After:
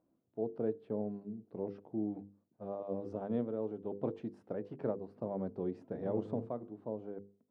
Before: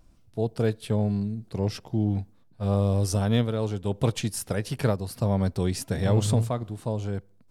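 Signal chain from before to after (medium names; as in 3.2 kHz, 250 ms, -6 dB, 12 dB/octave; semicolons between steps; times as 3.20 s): ladder band-pass 400 Hz, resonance 20%; hum notches 50/100/150/200/250/300/350/400/450/500 Hz; trim +4 dB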